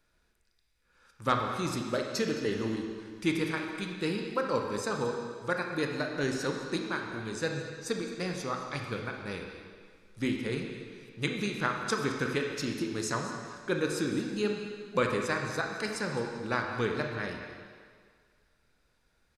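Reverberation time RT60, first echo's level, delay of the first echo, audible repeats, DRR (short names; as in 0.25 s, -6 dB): 1.8 s, -15.5 dB, 0.214 s, 1, 1.5 dB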